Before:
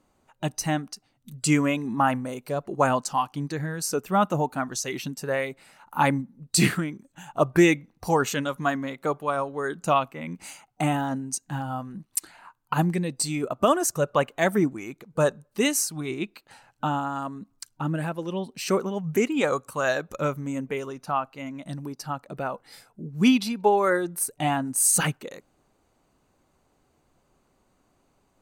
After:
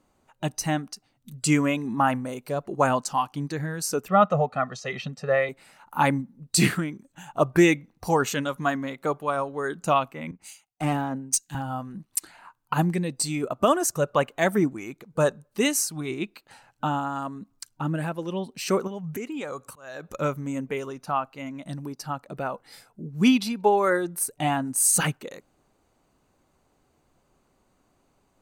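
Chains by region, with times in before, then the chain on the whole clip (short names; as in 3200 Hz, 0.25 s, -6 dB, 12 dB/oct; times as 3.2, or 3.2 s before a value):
4.08–5.49 de-esser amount 55% + BPF 110–3400 Hz + comb 1.6 ms, depth 97%
10.31–11.55 tube stage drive 20 dB, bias 0.25 + three-band expander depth 100%
18.87–20.14 compressor 4:1, threshold -31 dBFS + auto swell 0.284 s
whole clip: dry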